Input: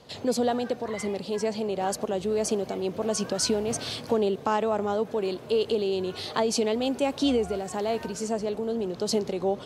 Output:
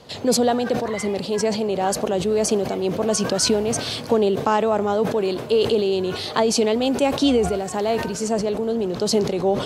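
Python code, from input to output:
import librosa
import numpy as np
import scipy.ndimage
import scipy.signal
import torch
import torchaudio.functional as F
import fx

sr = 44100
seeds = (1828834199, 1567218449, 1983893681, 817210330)

y = fx.sustainer(x, sr, db_per_s=78.0)
y = y * librosa.db_to_amplitude(6.0)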